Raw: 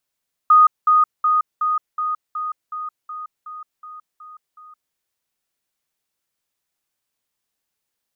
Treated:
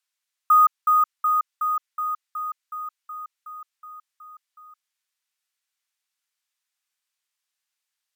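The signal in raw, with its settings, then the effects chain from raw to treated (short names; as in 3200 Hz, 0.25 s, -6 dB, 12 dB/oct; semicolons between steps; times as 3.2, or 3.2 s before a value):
level ladder 1240 Hz -7.5 dBFS, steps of -3 dB, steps 12, 0.17 s 0.20 s
HPF 1300 Hz 12 dB/oct; careless resampling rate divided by 2×, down filtered, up hold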